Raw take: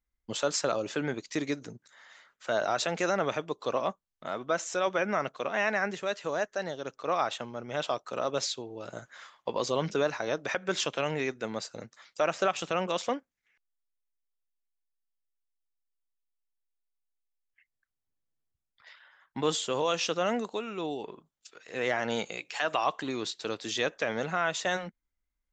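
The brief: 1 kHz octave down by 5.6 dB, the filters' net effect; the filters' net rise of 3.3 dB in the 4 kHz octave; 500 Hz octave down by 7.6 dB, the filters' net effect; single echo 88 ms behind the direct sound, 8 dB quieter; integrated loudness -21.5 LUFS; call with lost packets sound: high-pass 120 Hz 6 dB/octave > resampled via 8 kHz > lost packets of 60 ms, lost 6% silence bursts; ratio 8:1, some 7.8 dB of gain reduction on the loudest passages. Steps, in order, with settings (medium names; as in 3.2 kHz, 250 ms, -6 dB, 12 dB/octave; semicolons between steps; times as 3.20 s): peaking EQ 500 Hz -7.5 dB; peaking EQ 1 kHz -5.5 dB; peaking EQ 4 kHz +4.5 dB; compression 8:1, threshold -33 dBFS; high-pass 120 Hz 6 dB/octave; delay 88 ms -8 dB; resampled via 8 kHz; lost packets of 60 ms, lost 6% silence bursts; trim +18 dB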